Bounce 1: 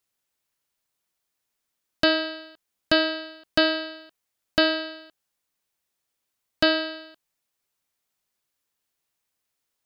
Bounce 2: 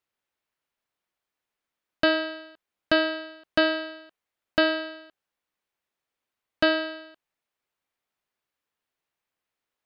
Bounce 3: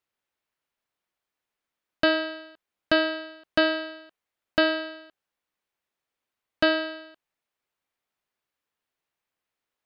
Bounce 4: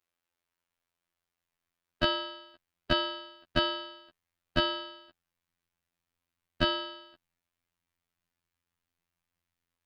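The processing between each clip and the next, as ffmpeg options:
ffmpeg -i in.wav -af "bass=frequency=250:gain=-4,treble=frequency=4000:gain=-12" out.wav
ffmpeg -i in.wav -af anull out.wav
ffmpeg -i in.wav -af "afftfilt=real='hypot(re,im)*cos(PI*b)':imag='0':win_size=2048:overlap=0.75,asubboost=boost=5:cutoff=190,volume=2dB" out.wav

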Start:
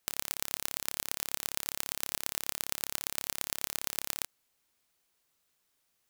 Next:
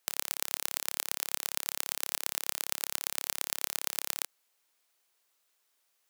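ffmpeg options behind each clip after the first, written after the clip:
ffmpeg -i in.wav -af "highpass=410,volume=1.5dB" out.wav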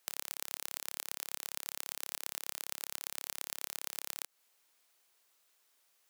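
ffmpeg -i in.wav -af "acompressor=threshold=-34dB:ratio=10,volume=2.5dB" out.wav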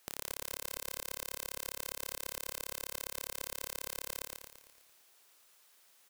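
ffmpeg -i in.wav -filter_complex "[0:a]asoftclip=type=tanh:threshold=-20dB,asplit=2[link_01][link_02];[link_02]aecho=0:1:113|226|339|452|565|678|791:0.631|0.334|0.177|0.0939|0.0498|0.0264|0.014[link_03];[link_01][link_03]amix=inputs=2:normalize=0,volume=5.5dB" out.wav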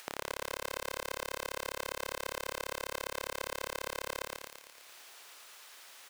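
ffmpeg -i in.wav -filter_complex "[0:a]acompressor=mode=upward:threshold=-51dB:ratio=2.5,asplit=2[link_01][link_02];[link_02]highpass=frequency=720:poles=1,volume=17dB,asoftclip=type=tanh:threshold=-14dB[link_03];[link_01][link_03]amix=inputs=2:normalize=0,lowpass=frequency=3800:poles=1,volume=-6dB" out.wav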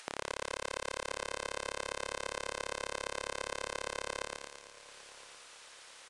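ffmpeg -i in.wav -af "aecho=1:1:1016|2032|3048:0.1|0.045|0.0202,aresample=22050,aresample=44100" out.wav

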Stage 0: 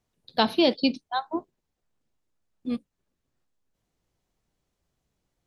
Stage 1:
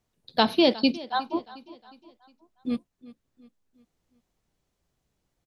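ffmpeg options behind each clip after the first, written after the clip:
ffmpeg -i in.wav -af "aecho=1:1:360|720|1080|1440:0.112|0.0505|0.0227|0.0102,volume=1dB" out.wav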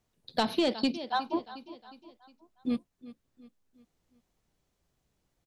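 ffmpeg -i in.wav -af "asoftclip=type=tanh:threshold=-13dB,acompressor=threshold=-25dB:ratio=3" out.wav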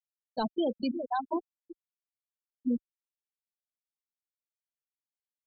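ffmpeg -i in.wav -af "afftfilt=real='re*gte(hypot(re,im),0.1)':imag='im*gte(hypot(re,im),0.1)':win_size=1024:overlap=0.75,asubboost=boost=7.5:cutoff=64,alimiter=level_in=4.5dB:limit=-24dB:level=0:latency=1:release=86,volume=-4.5dB,volume=6.5dB" out.wav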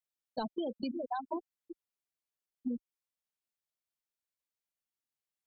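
ffmpeg -i in.wav -af "acompressor=threshold=-33dB:ratio=6" out.wav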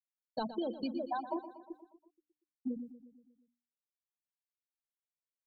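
ffmpeg -i in.wav -filter_complex "[0:a]agate=range=-33dB:threshold=-53dB:ratio=3:detection=peak,bandreject=frequency=60:width_type=h:width=6,bandreject=frequency=120:width_type=h:width=6,bandreject=frequency=180:width_type=h:width=6,bandreject=frequency=240:width_type=h:width=6,bandreject=frequency=300:width_type=h:width=6,asplit=2[link_01][link_02];[link_02]aecho=0:1:119|238|357|476|595|714:0.224|0.128|0.0727|0.0415|0.0236|0.0135[link_03];[link_01][link_03]amix=inputs=2:normalize=0" out.wav

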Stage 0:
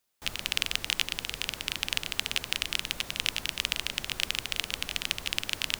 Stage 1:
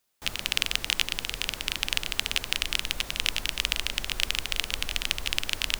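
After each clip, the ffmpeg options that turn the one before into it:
ffmpeg -i in.wav -af "asubboost=boost=4:cutoff=58,volume=2.5dB" out.wav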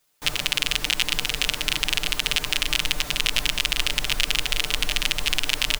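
ffmpeg -i in.wav -af "aecho=1:1:6.7:0.93,alimiter=limit=-6dB:level=0:latency=1:release=64,volume=4.5dB" out.wav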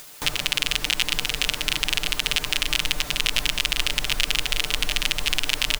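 ffmpeg -i in.wav -af "acompressor=mode=upward:threshold=-24dB:ratio=2.5" out.wav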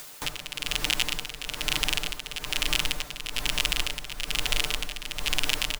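ffmpeg -i in.wav -filter_complex "[0:a]acrossover=split=320|1300|5100[link_01][link_02][link_03][link_04];[link_02]crystalizer=i=5:c=0[link_05];[link_01][link_05][link_03][link_04]amix=inputs=4:normalize=0,asoftclip=type=tanh:threshold=-8.5dB,tremolo=f=1.1:d=0.74" out.wav

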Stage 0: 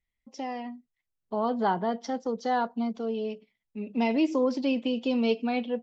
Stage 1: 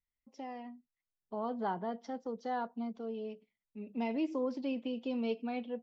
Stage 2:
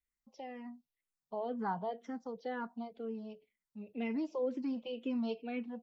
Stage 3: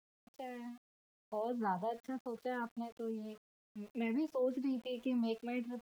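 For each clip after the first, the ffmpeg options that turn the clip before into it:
ffmpeg -i in.wav -af "highshelf=frequency=4400:gain=-10,volume=-9dB" out.wav
ffmpeg -i in.wav -filter_complex "[0:a]asplit=2[link_01][link_02];[link_02]afreqshift=-2[link_03];[link_01][link_03]amix=inputs=2:normalize=1,volume=1.5dB" out.wav
ffmpeg -i in.wav -af "aeval=exprs='val(0)*gte(abs(val(0)),0.0015)':channel_layout=same" out.wav

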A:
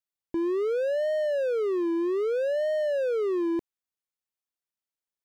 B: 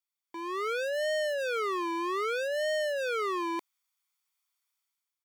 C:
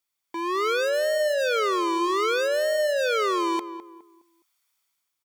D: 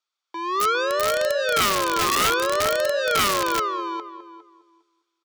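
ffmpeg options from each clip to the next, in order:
ffmpeg -i in.wav -af "highpass=980,dynaudnorm=framelen=140:gausssize=7:maxgain=10dB,aecho=1:1:0.9:0.47" out.wav
ffmpeg -i in.wav -filter_complex "[0:a]asoftclip=type=hard:threshold=-28.5dB,asplit=2[link_01][link_02];[link_02]adelay=207,lowpass=frequency=1400:poles=1,volume=-10.5dB,asplit=2[link_03][link_04];[link_04]adelay=207,lowpass=frequency=1400:poles=1,volume=0.35,asplit=2[link_05][link_06];[link_06]adelay=207,lowpass=frequency=1400:poles=1,volume=0.35,asplit=2[link_07][link_08];[link_08]adelay=207,lowpass=frequency=1400:poles=1,volume=0.35[link_09];[link_03][link_05][link_07][link_09]amix=inputs=4:normalize=0[link_10];[link_01][link_10]amix=inputs=2:normalize=0,volume=8.5dB" out.wav
ffmpeg -i in.wav -filter_complex "[0:a]highpass=370,equalizer=frequency=1300:width_type=q:width=4:gain=8,equalizer=frequency=2000:width_type=q:width=4:gain=-5,equalizer=frequency=3800:width_type=q:width=4:gain=4,lowpass=frequency=6400:width=0.5412,lowpass=frequency=6400:width=1.3066,asplit=2[link_01][link_02];[link_02]adelay=405,lowpass=frequency=3200:poles=1,volume=-4dB,asplit=2[link_03][link_04];[link_04]adelay=405,lowpass=frequency=3200:poles=1,volume=0.16,asplit=2[link_05][link_06];[link_06]adelay=405,lowpass=frequency=3200:poles=1,volume=0.16[link_07];[link_01][link_03][link_05][link_07]amix=inputs=4:normalize=0,aeval=exprs='(mod(5.31*val(0)+1,2)-1)/5.31':channel_layout=same" out.wav

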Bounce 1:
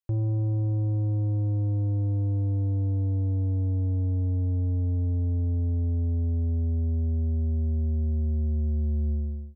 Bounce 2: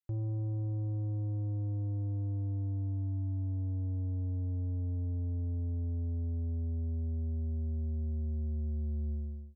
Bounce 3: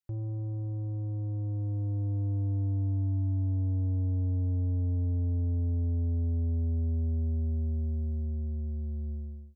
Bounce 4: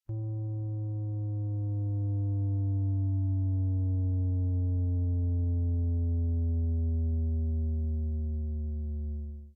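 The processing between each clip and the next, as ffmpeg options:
ffmpeg -i in.wav -af "bandreject=frequency=480:width=12,volume=-8.5dB" out.wav
ffmpeg -i in.wav -af "dynaudnorm=framelen=220:gausssize=17:maxgain=5.5dB" out.wav
ffmpeg -i in.wav -ar 44100 -c:a libvorbis -b:a 48k out.ogg

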